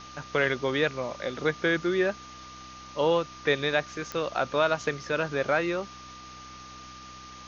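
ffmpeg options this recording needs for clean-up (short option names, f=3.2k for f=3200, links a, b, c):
-af "adeclick=t=4,bandreject=f=63.6:t=h:w=4,bandreject=f=127.2:t=h:w=4,bandreject=f=190.8:t=h:w=4,bandreject=f=254.4:t=h:w=4,bandreject=f=318:t=h:w=4,bandreject=f=1.2k:w=30,afwtdn=0.0056"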